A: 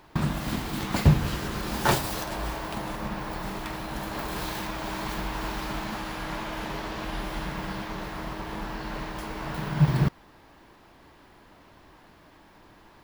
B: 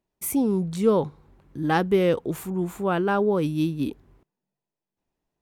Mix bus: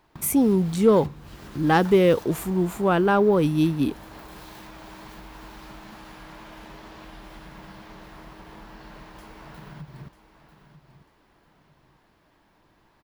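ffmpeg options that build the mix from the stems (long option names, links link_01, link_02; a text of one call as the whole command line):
ffmpeg -i stem1.wav -i stem2.wav -filter_complex "[0:a]acompressor=threshold=-30dB:ratio=6,volume=-9dB,asplit=2[link_01][link_02];[link_02]volume=-12.5dB[link_03];[1:a]acontrast=72,volume=-3dB[link_04];[link_03]aecho=0:1:944|1888|2832|3776:1|0.31|0.0961|0.0298[link_05];[link_01][link_04][link_05]amix=inputs=3:normalize=0" out.wav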